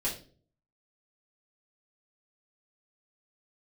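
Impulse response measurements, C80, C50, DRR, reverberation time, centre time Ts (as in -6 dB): 13.5 dB, 8.5 dB, -8.0 dB, 0.45 s, 23 ms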